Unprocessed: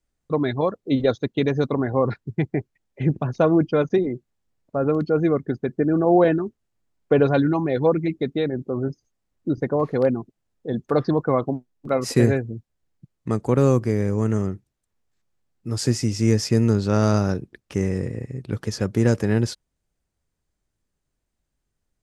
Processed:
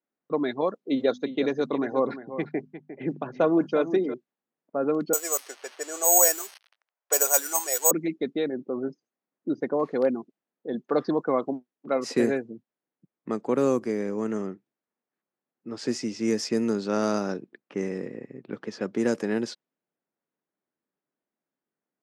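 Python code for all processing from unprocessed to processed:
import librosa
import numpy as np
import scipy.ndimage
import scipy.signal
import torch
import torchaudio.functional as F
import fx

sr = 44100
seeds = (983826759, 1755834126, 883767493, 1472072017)

y = fx.chain(x, sr, fx.hum_notches(base_hz=50, count=5),
    fx.echo_single(ms=353, db=-12.0), at=(0.74, 4.14))
y = fx.chain(y, sr, fx.crossing_spikes(level_db=-21.0),
    fx.highpass(hz=570.0, slope=24),
    fx.resample_bad(factor=6, down='filtered', up='zero_stuff'), at=(5.13, 7.91))
y = scipy.signal.sosfilt(scipy.signal.butter(4, 210.0, 'highpass', fs=sr, output='sos'), y)
y = fx.env_lowpass(y, sr, base_hz=1900.0, full_db=-16.0)
y = F.gain(torch.from_numpy(y), -3.5).numpy()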